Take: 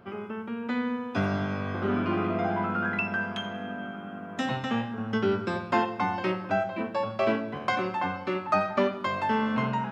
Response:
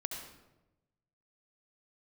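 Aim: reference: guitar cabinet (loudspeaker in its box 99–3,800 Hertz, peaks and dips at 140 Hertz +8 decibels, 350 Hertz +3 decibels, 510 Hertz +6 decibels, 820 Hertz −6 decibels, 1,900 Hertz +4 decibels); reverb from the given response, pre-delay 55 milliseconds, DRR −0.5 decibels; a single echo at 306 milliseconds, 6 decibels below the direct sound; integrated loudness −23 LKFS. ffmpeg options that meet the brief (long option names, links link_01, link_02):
-filter_complex "[0:a]aecho=1:1:306:0.501,asplit=2[link_01][link_02];[1:a]atrim=start_sample=2205,adelay=55[link_03];[link_02][link_03]afir=irnorm=-1:irlink=0,volume=0dB[link_04];[link_01][link_04]amix=inputs=2:normalize=0,highpass=99,equalizer=frequency=140:width_type=q:width=4:gain=8,equalizer=frequency=350:width_type=q:width=4:gain=3,equalizer=frequency=510:width_type=q:width=4:gain=6,equalizer=frequency=820:width_type=q:width=4:gain=-6,equalizer=frequency=1900:width_type=q:width=4:gain=4,lowpass=frequency=3800:width=0.5412,lowpass=frequency=3800:width=1.3066,volume=1dB"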